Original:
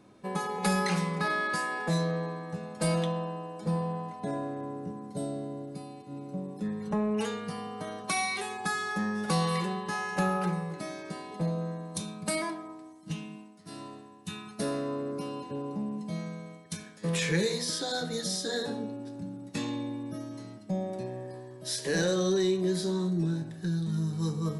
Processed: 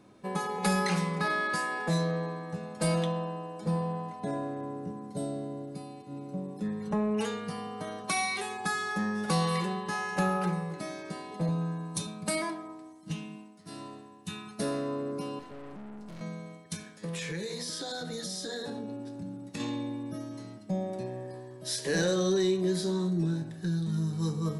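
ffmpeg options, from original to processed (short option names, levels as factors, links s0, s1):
-filter_complex "[0:a]asettb=1/sr,asplit=3[s0][s1][s2];[s0]atrim=end=11.484[s3];[s1]atrim=start=11.48:end=12.07,asetpts=PTS-STARTPTS,afade=t=in:d=0.004:c=qsin,afade=t=out:st=0.586:d=0.004:c=qsin,aecho=1:1:7.1:0.69,atrim=end_sample=26019[s4];[s2]atrim=start=12.066[s5];[s3][s4]acrossfade=d=0.004:c1=hsin:c2=qsin[s6];[s6][s5]acrossfade=d=0.004:c1=qsin:c2=hsin,asettb=1/sr,asplit=3[s7][s8][s9];[s7]atrim=end=15.394[s10];[s8]atrim=start=15.39:end=16.21,asetpts=PTS-STARTPTS,afade=t=in:d=0.004:c=qsin,afade=t=out:st=0.816:d=0.004:c=qsin,aeval=exprs='(tanh(141*val(0)+0.7)-tanh(0.7))/141':c=same[s11];[s9]atrim=start=16.206[s12];[s10][s11]acrossfade=d=0.004:c1=hsin:c2=qsin[s13];[s13][s12]acrossfade=d=0.004:c1=qsin:c2=hsin,asettb=1/sr,asplit=3[s14][s15][s16];[s14]atrim=end=16.864[s17];[s15]atrim=start=16.86:end=19.6,asetpts=PTS-STARTPTS,afade=t=in:d=0.004:c=qsin,afade=t=out:st=2.736:d=0.004:c=qsin,acompressor=threshold=0.0224:ratio=5:attack=3.2:release=140:knee=1:detection=peak[s18];[s16]atrim=start=19.596[s19];[s17][s18]acrossfade=d=0.004:c1=hsin:c2=qsin[s20];[s20][s19]acrossfade=d=0.004:c1=qsin:c2=hsin"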